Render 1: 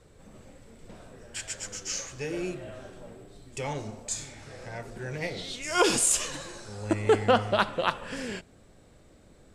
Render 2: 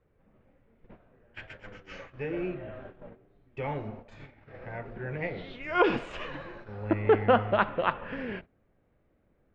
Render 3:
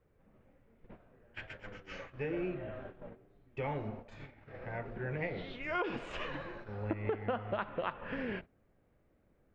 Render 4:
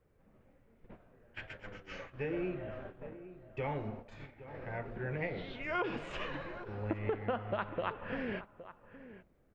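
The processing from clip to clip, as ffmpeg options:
-af "lowpass=f=2.5k:w=0.5412,lowpass=f=2.5k:w=1.3066,agate=range=-13dB:threshold=-44dB:ratio=16:detection=peak"
-af "acompressor=threshold=-30dB:ratio=8,volume=-1.5dB"
-filter_complex "[0:a]asplit=2[a][b];[b]adelay=816.3,volume=-14dB,highshelf=f=4k:g=-18.4[c];[a][c]amix=inputs=2:normalize=0"

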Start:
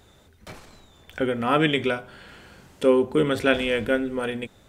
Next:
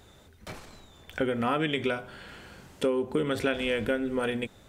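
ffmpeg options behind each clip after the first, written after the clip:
-af "acompressor=threshold=-23dB:ratio=12"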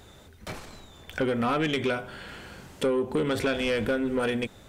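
-af "asoftclip=type=tanh:threshold=-23dB,volume=4dB"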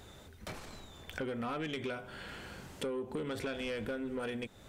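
-af "acompressor=threshold=-40dB:ratio=2,volume=-2.5dB"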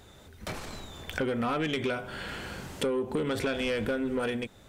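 -af "dynaudnorm=f=110:g=7:m=8dB"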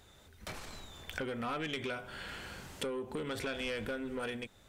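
-af "equalizer=f=240:w=0.3:g=-5,volume=-4.5dB"

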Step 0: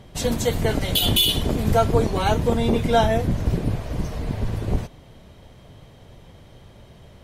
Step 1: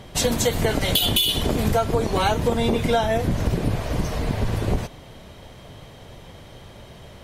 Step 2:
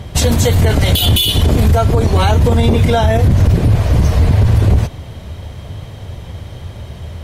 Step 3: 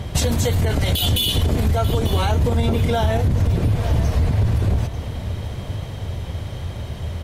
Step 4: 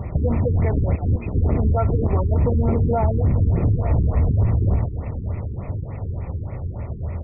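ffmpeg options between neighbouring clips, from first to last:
-af "lowshelf=f=380:g=-5.5,acompressor=threshold=-24dB:ratio=10,volume=7.5dB"
-af "equalizer=f=82:w=1.1:g=15,alimiter=limit=-10dB:level=0:latency=1:release=14,volume=6.5dB"
-af "acompressor=threshold=-18dB:ratio=3,aecho=1:1:891|1782|2673|3564:0.224|0.0851|0.0323|0.0123"
-af "asuperstop=centerf=1600:order=4:qfactor=4.6,afftfilt=real='re*lt(b*sr/1024,430*pow(2700/430,0.5+0.5*sin(2*PI*3.4*pts/sr)))':imag='im*lt(b*sr/1024,430*pow(2700/430,0.5+0.5*sin(2*PI*3.4*pts/sr)))':win_size=1024:overlap=0.75"

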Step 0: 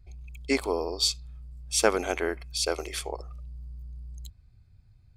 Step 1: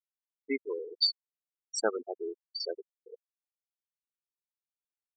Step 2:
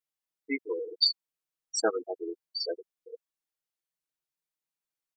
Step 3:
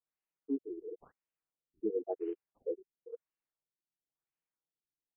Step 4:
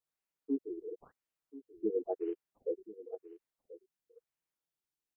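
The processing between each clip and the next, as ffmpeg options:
-af "afftfilt=real='re*gte(hypot(re,im),0.158)':imag='im*gte(hypot(re,im),0.158)':win_size=1024:overlap=0.75,equalizer=f=4.3k:w=1.5:g=7.5,volume=-6dB"
-af "aecho=1:1:6.3:0.93"
-af "acrusher=bits=6:mode=log:mix=0:aa=0.000001,afftfilt=real='re*lt(b*sr/1024,400*pow(3200/400,0.5+0.5*sin(2*PI*0.97*pts/sr)))':imag='im*lt(b*sr/1024,400*pow(3200/400,0.5+0.5*sin(2*PI*0.97*pts/sr)))':win_size=1024:overlap=0.75,volume=-1dB"
-af "aecho=1:1:1034:0.15,volume=1dB"

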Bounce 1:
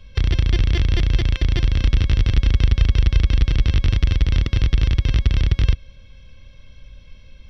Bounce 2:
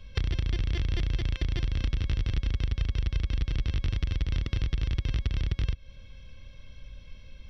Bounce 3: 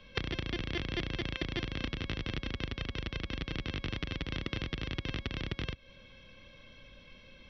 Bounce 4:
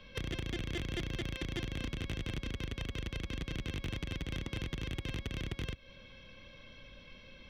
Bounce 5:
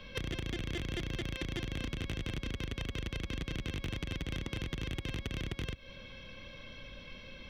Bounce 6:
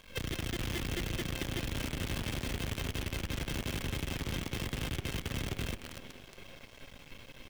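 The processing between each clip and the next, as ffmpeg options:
-af "acompressor=threshold=-22dB:ratio=4,volume=-3dB"
-filter_complex "[0:a]acrossover=split=170 4600:gain=0.126 1 0.2[a][b][c];[a][b][c]amix=inputs=3:normalize=0,volume=3.5dB"
-af "asoftclip=type=tanh:threshold=-31dB,volume=1dB"
-af "acompressor=threshold=-39dB:ratio=6,volume=5dB"
-filter_complex "[0:a]asplit=9[a][b][c][d][e][f][g][h][i];[b]adelay=227,afreqshift=-150,volume=-8.5dB[j];[c]adelay=454,afreqshift=-300,volume=-12.9dB[k];[d]adelay=681,afreqshift=-450,volume=-17.4dB[l];[e]adelay=908,afreqshift=-600,volume=-21.8dB[m];[f]adelay=1135,afreqshift=-750,volume=-26.2dB[n];[g]adelay=1362,afreqshift=-900,volume=-30.7dB[o];[h]adelay=1589,afreqshift=-1050,volume=-35.1dB[p];[i]adelay=1816,afreqshift=-1200,volume=-39.6dB[q];[a][j][k][l][m][n][o][p][q]amix=inputs=9:normalize=0,acrusher=bits=7:dc=4:mix=0:aa=0.000001"

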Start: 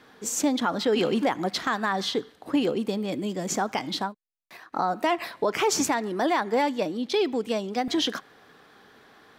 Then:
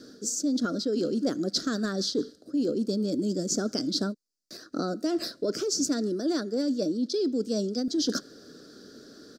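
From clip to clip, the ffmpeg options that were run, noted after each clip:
-af "firequalizer=gain_entry='entry(120,0);entry(280,10);entry(410,4);entry(600,1);entry(870,-27);entry(1400,-2);entry(2100,-20);entry(3000,-12);entry(4700,12);entry(11000,-2)':delay=0.05:min_phase=1,areverse,acompressor=threshold=-28dB:ratio=10,areverse,volume=3.5dB"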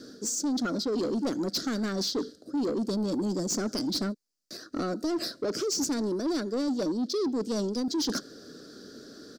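-af "asoftclip=type=tanh:threshold=-26dB,volume=2dB"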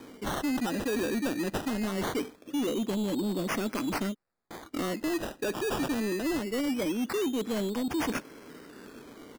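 -af "acrusher=samples=16:mix=1:aa=0.000001:lfo=1:lforange=9.6:lforate=0.22,volume=-1dB"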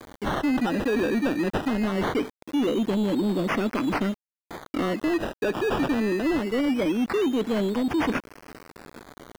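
-filter_complex "[0:a]aeval=exprs='val(0)*gte(abs(val(0)),0.00708)':c=same,acrossover=split=3700[a][b];[b]acompressor=threshold=-52dB:ratio=4:attack=1:release=60[c];[a][c]amix=inputs=2:normalize=0,volume=6dB"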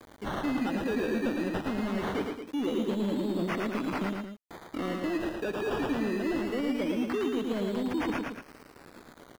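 -af "aecho=1:1:110.8|224.5:0.631|0.355,volume=-7.5dB"

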